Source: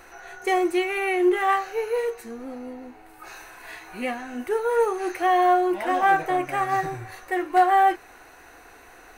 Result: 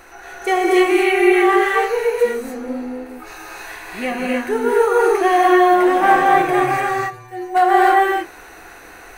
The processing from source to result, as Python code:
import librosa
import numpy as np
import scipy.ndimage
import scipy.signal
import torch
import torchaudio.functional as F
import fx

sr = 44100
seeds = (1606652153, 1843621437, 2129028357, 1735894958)

y = fx.stiff_resonator(x, sr, f0_hz=120.0, decay_s=0.46, stiffness=0.002, at=(6.79, 7.54), fade=0.02)
y = fx.rev_gated(y, sr, seeds[0], gate_ms=320, shape='rising', drr_db=-3.5)
y = y * 10.0 ** (4.0 / 20.0)